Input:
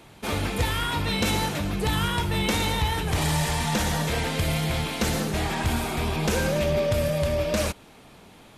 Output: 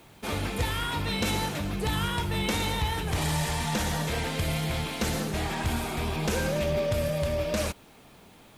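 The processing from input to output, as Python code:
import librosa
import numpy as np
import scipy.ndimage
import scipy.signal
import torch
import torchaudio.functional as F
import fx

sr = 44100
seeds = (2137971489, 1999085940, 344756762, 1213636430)

y = fx.dmg_noise_colour(x, sr, seeds[0], colour='blue', level_db=-63.0)
y = y * librosa.db_to_amplitude(-3.5)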